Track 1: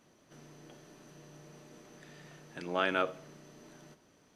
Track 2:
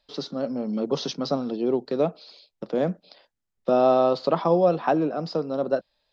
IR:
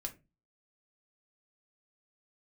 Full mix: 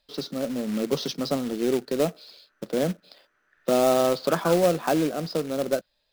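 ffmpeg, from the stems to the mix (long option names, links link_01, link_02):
-filter_complex "[0:a]bandpass=frequency=1500:width_type=q:width=4.5:csg=0,adelay=1500,volume=0.5dB[link_01];[1:a]acrusher=bits=3:mode=log:mix=0:aa=0.000001,volume=0dB[link_02];[link_01][link_02]amix=inputs=2:normalize=0,equalizer=frequency=870:width=1.7:gain=-4.5"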